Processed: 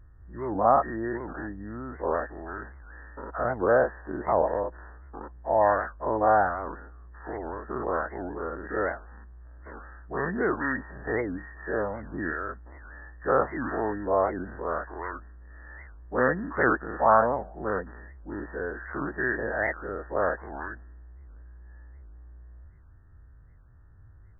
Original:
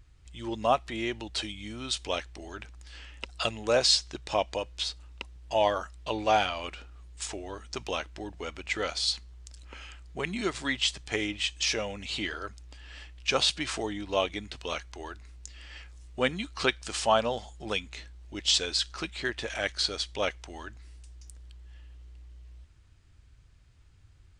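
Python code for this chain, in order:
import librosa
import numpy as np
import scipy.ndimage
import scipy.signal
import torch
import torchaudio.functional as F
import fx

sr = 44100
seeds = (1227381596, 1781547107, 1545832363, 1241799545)

y = fx.spec_dilate(x, sr, span_ms=120)
y = fx.brickwall_lowpass(y, sr, high_hz=1900.0)
y = fx.record_warp(y, sr, rpm=78.0, depth_cents=250.0)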